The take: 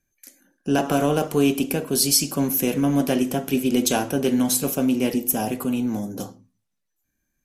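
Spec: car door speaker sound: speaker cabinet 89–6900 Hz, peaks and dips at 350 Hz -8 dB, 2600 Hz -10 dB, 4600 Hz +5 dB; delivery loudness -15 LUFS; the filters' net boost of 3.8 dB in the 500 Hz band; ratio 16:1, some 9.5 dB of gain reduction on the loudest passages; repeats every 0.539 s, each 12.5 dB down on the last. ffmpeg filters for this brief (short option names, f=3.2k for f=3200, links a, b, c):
-af "equalizer=f=500:t=o:g=7,acompressor=threshold=-21dB:ratio=16,highpass=89,equalizer=f=350:t=q:w=4:g=-8,equalizer=f=2.6k:t=q:w=4:g=-10,equalizer=f=4.6k:t=q:w=4:g=5,lowpass=f=6.9k:w=0.5412,lowpass=f=6.9k:w=1.3066,aecho=1:1:539|1078|1617:0.237|0.0569|0.0137,volume=13dB"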